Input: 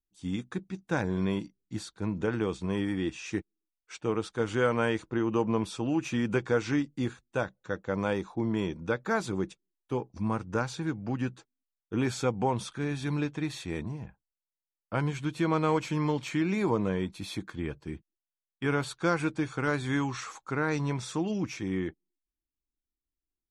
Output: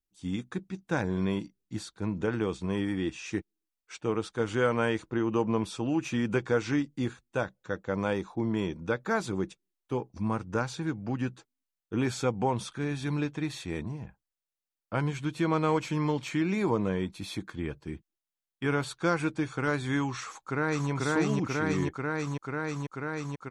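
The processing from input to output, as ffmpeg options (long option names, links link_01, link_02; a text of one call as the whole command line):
ffmpeg -i in.wav -filter_complex "[0:a]asplit=2[link_01][link_02];[link_02]afade=type=in:start_time=20.23:duration=0.01,afade=type=out:start_time=20.9:duration=0.01,aecho=0:1:490|980|1470|1960|2450|2940|3430|3920|4410|4900|5390|5880:1|0.85|0.7225|0.614125|0.522006|0.443705|0.37715|0.320577|0.272491|0.231617|0.196874|0.167343[link_03];[link_01][link_03]amix=inputs=2:normalize=0" out.wav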